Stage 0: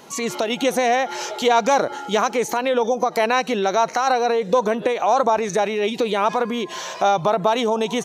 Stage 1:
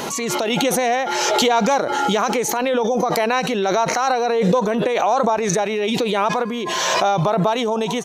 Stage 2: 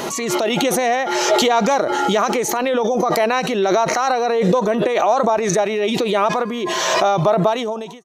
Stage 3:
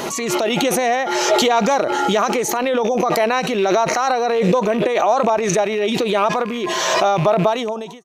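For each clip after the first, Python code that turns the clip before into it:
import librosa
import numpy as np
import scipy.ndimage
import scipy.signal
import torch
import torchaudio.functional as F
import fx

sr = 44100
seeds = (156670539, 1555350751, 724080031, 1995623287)

y1 = fx.pre_swell(x, sr, db_per_s=20.0)
y1 = y1 * librosa.db_to_amplitude(-1.0)
y2 = fx.fade_out_tail(y1, sr, length_s=0.58)
y2 = fx.small_body(y2, sr, hz=(360.0, 630.0, 1200.0, 1900.0), ring_ms=45, db=6)
y3 = fx.rattle_buzz(y2, sr, strikes_db=-29.0, level_db=-21.0)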